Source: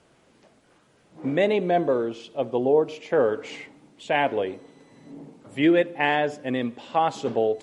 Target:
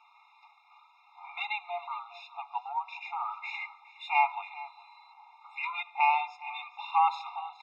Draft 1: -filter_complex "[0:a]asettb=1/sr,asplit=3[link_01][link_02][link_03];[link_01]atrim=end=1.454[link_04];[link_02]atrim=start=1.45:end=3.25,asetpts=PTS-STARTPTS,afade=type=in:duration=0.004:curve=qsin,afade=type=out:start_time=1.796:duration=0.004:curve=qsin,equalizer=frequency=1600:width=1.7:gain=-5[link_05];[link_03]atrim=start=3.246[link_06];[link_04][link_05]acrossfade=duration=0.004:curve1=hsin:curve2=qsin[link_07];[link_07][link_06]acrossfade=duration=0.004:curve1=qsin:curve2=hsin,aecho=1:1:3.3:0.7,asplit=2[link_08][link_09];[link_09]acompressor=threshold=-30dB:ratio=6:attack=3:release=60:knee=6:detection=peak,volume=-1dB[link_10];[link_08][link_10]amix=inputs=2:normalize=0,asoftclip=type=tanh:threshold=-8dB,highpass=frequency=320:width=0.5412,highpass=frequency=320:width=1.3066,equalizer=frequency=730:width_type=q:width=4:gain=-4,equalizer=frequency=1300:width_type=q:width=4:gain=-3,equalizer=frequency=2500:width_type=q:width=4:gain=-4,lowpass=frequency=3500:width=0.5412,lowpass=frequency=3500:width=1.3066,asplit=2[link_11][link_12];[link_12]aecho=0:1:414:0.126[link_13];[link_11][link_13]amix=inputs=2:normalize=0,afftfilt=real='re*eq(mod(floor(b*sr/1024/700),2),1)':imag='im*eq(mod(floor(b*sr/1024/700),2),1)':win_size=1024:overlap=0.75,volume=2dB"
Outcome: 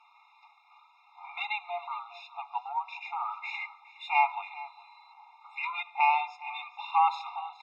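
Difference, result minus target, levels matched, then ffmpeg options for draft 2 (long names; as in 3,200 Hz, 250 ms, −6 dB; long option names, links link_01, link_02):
downward compressor: peak gain reduction −5 dB
-filter_complex "[0:a]asettb=1/sr,asplit=3[link_01][link_02][link_03];[link_01]atrim=end=1.454[link_04];[link_02]atrim=start=1.45:end=3.25,asetpts=PTS-STARTPTS,afade=type=in:duration=0.004:curve=qsin,afade=type=out:start_time=1.796:duration=0.004:curve=qsin,equalizer=frequency=1600:width=1.7:gain=-5[link_05];[link_03]atrim=start=3.246[link_06];[link_04][link_05]acrossfade=duration=0.004:curve1=hsin:curve2=qsin[link_07];[link_07][link_06]acrossfade=duration=0.004:curve1=qsin:curve2=hsin,aecho=1:1:3.3:0.7,asplit=2[link_08][link_09];[link_09]acompressor=threshold=-36dB:ratio=6:attack=3:release=60:knee=6:detection=peak,volume=-1dB[link_10];[link_08][link_10]amix=inputs=2:normalize=0,asoftclip=type=tanh:threshold=-8dB,highpass=frequency=320:width=0.5412,highpass=frequency=320:width=1.3066,equalizer=frequency=730:width_type=q:width=4:gain=-4,equalizer=frequency=1300:width_type=q:width=4:gain=-3,equalizer=frequency=2500:width_type=q:width=4:gain=-4,lowpass=frequency=3500:width=0.5412,lowpass=frequency=3500:width=1.3066,asplit=2[link_11][link_12];[link_12]aecho=0:1:414:0.126[link_13];[link_11][link_13]amix=inputs=2:normalize=0,afftfilt=real='re*eq(mod(floor(b*sr/1024/700),2),1)':imag='im*eq(mod(floor(b*sr/1024/700),2),1)':win_size=1024:overlap=0.75,volume=2dB"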